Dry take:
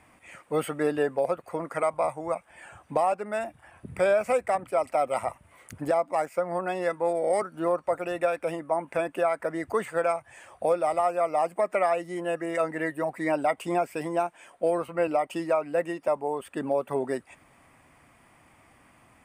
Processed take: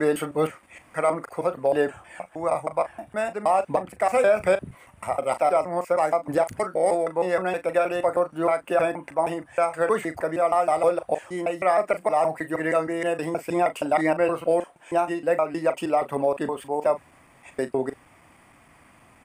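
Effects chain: slices played last to first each 157 ms, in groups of 6; doubling 38 ms -12 dB; trim +3.5 dB

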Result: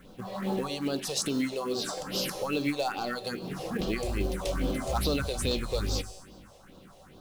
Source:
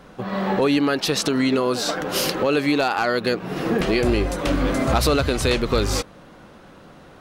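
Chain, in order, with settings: in parallel at -2 dB: compression 6:1, threshold -28 dBFS, peak gain reduction 13 dB; on the sum: low-pass 12 kHz 24 dB/octave; treble shelf 4.6 kHz +6 dB; feedback comb 190 Hz, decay 1.3 s, mix 70%; on a send at -11.5 dB: reverberation RT60 0.65 s, pre-delay 4 ms; on the sum: phase shifter stages 4, 2.4 Hz, lowest notch 230–2000 Hz; companded quantiser 6-bit; trim -1 dB

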